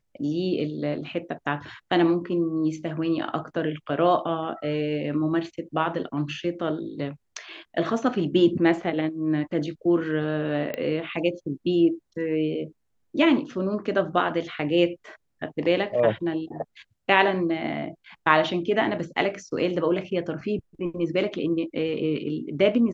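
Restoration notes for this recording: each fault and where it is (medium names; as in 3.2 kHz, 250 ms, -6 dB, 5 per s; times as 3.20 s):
10.74 s: pop -17 dBFS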